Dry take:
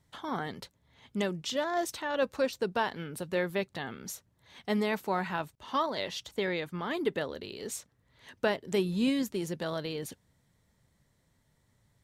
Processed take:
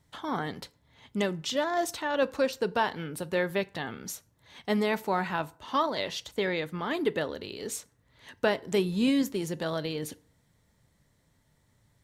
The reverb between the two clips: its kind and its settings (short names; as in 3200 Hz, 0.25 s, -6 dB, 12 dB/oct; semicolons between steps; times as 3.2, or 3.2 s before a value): FDN reverb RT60 0.47 s, low-frequency decay 0.8×, high-frequency decay 0.65×, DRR 15.5 dB; gain +2.5 dB